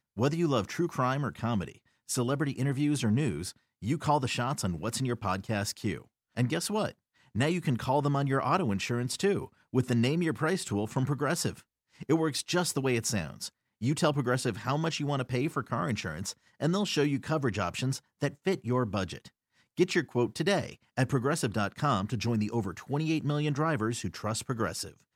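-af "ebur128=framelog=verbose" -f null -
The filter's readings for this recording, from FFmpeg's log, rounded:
Integrated loudness:
  I:         -30.4 LUFS
  Threshold: -40.7 LUFS
Loudness range:
  LRA:         2.0 LU
  Threshold: -50.7 LUFS
  LRA low:   -31.5 LUFS
  LRA high:  -29.5 LUFS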